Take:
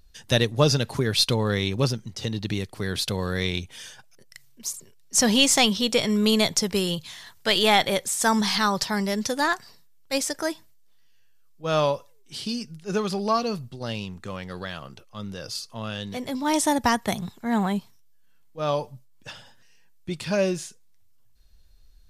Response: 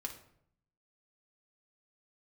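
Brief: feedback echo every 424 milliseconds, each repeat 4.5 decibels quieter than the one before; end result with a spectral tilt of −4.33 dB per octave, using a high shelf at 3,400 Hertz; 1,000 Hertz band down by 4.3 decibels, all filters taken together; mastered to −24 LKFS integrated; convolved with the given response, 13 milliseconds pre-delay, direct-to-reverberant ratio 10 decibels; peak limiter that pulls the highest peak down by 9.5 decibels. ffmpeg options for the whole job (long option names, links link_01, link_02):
-filter_complex "[0:a]equalizer=frequency=1000:width_type=o:gain=-5,highshelf=frequency=3400:gain=-5,alimiter=limit=-17dB:level=0:latency=1,aecho=1:1:424|848|1272|1696|2120|2544|2968|3392|3816:0.596|0.357|0.214|0.129|0.0772|0.0463|0.0278|0.0167|0.01,asplit=2[link_01][link_02];[1:a]atrim=start_sample=2205,adelay=13[link_03];[link_02][link_03]afir=irnorm=-1:irlink=0,volume=-9dB[link_04];[link_01][link_04]amix=inputs=2:normalize=0,volume=3.5dB"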